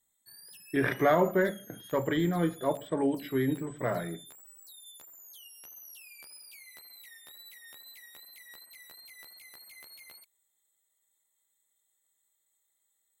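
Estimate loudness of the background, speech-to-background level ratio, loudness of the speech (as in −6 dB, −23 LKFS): −49.0 LKFS, 19.5 dB, −29.5 LKFS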